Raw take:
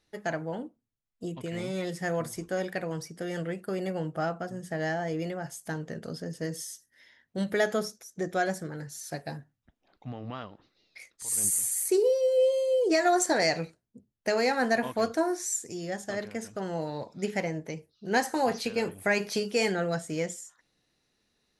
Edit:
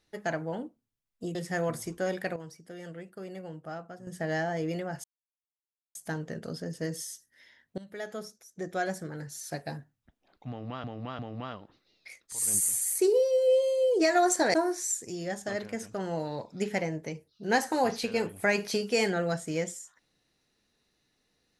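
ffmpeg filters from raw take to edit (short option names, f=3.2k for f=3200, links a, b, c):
-filter_complex "[0:a]asplit=9[a][b][c][d][e][f][g][h][i];[a]atrim=end=1.352[j];[b]atrim=start=1.858:end=2.872[k];[c]atrim=start=2.868:end=4.582,asetpts=PTS-STARTPTS,volume=-9.5dB[l];[d]atrim=start=4.578:end=5.55,asetpts=PTS-STARTPTS,afade=t=out:st=0.968:d=0.004:c=hsin,apad=pad_dur=0.91[m];[e]atrim=start=5.55:end=7.38,asetpts=PTS-STARTPTS,afade=t=in:d=0.004:c=hsin,afade=t=out:st=1.826:d=0.004:c=hsin:silence=0.0944061[n];[f]atrim=start=7.38:end=10.442,asetpts=PTS-STARTPTS,afade=t=in:d=1.56:silence=0.0944061[o];[g]atrim=start=10.088:end=10.442[p];[h]atrim=start=10.088:end=13.442[q];[i]atrim=start=15.158[r];[j][k]acrossfade=d=0.004:c1=hsin:c2=hsin[s];[s][l]acrossfade=d=0.004:c1=hsin:c2=hsin[t];[m][n][o]concat=n=3:v=0:a=1[u];[t][u]acrossfade=d=0.004:c1=hsin:c2=hsin[v];[v][p]acrossfade=d=0.004:c1=hsin:c2=hsin[w];[w][q]acrossfade=d=0.004:c1=hsin:c2=hsin[x];[x][r]acrossfade=d=0.004:c1=hsin:c2=hsin"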